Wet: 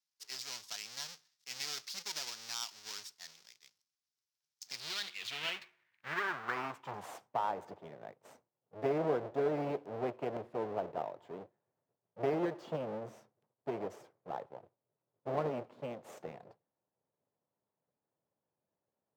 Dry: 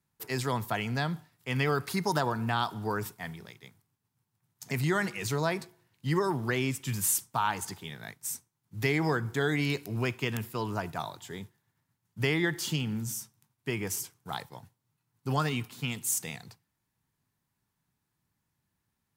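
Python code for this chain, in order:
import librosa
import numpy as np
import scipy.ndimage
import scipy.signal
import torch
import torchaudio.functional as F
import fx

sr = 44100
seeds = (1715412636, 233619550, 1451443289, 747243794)

y = fx.halfwave_hold(x, sr)
y = fx.filter_sweep_bandpass(y, sr, from_hz=5400.0, to_hz=560.0, start_s=4.65, end_s=7.51, q=2.7)
y = np.interp(np.arange(len(y)), np.arange(len(y))[::2], y[::2])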